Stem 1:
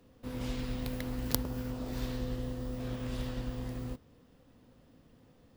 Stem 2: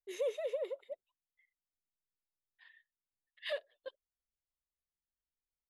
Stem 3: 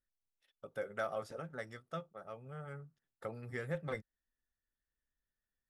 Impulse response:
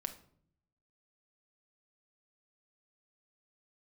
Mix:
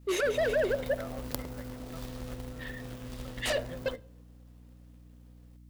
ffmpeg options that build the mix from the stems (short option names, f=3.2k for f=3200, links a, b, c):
-filter_complex "[0:a]acrusher=bits=2:mode=log:mix=0:aa=0.000001,volume=-6dB[a];[1:a]acompressor=threshold=-39dB:ratio=6,aeval=exprs='0.0316*sin(PI/2*3.98*val(0)/0.0316)':c=same,volume=-1.5dB,asplit=2[b][c];[c]volume=-5.5dB[d];[2:a]volume=-10dB[e];[3:a]atrim=start_sample=2205[f];[d][f]afir=irnorm=-1:irlink=0[g];[a][b][e][g]amix=inputs=4:normalize=0,adynamicequalizer=threshold=0.00562:dfrequency=590:dqfactor=0.82:tfrequency=590:tqfactor=0.82:attack=5:release=100:ratio=0.375:range=3:mode=boostabove:tftype=bell,aeval=exprs='val(0)+0.00251*(sin(2*PI*60*n/s)+sin(2*PI*2*60*n/s)/2+sin(2*PI*3*60*n/s)/3+sin(2*PI*4*60*n/s)/4+sin(2*PI*5*60*n/s)/5)':c=same"